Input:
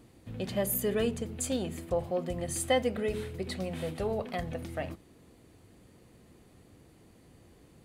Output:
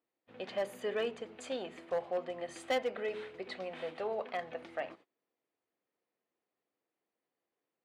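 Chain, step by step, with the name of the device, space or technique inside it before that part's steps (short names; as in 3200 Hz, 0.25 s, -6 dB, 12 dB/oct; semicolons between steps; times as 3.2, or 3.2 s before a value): walkie-talkie (BPF 510–3000 Hz; hard clip -27 dBFS, distortion -14 dB; gate -56 dBFS, range -24 dB)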